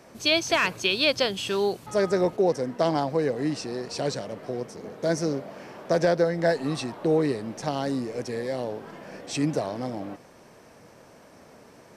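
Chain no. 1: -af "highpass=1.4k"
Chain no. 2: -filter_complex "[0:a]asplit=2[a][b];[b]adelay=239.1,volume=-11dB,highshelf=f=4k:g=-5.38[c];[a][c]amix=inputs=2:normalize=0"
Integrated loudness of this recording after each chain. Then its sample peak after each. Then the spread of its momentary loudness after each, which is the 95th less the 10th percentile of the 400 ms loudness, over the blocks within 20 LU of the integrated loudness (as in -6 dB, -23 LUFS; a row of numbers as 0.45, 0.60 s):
-31.5, -26.0 LUFS; -11.0, -9.0 dBFS; 24, 12 LU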